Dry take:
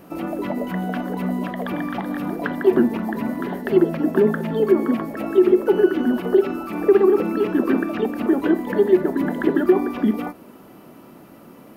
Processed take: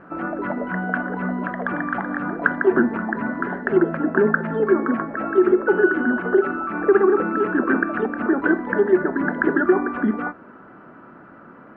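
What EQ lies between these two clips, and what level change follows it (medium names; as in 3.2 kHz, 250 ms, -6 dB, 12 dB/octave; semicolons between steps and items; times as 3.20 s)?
resonant low-pass 1.5 kHz, resonance Q 5.3; -2.0 dB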